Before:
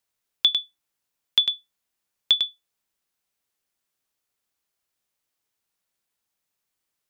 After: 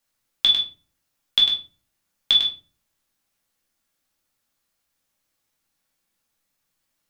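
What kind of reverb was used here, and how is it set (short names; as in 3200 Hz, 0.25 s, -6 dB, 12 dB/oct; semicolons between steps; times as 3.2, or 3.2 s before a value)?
shoebox room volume 240 m³, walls furnished, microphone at 2.3 m; gain +1.5 dB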